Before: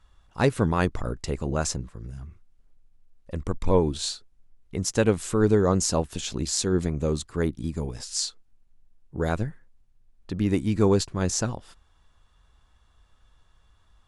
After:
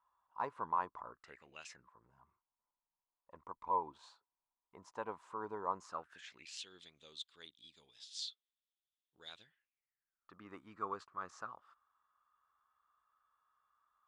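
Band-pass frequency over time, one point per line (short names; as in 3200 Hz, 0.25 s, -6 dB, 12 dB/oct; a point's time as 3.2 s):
band-pass, Q 8.3
1.09 s 1000 Hz
1.63 s 3100 Hz
1.88 s 980 Hz
5.76 s 980 Hz
6.74 s 3500 Hz
9.41 s 3500 Hz
10.32 s 1200 Hz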